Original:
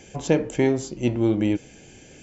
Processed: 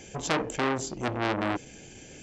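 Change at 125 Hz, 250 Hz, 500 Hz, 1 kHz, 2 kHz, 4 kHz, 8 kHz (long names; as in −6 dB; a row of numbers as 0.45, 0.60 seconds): −9.0 dB, −10.0 dB, −7.5 dB, +6.5 dB, +3.0 dB, +3.0 dB, can't be measured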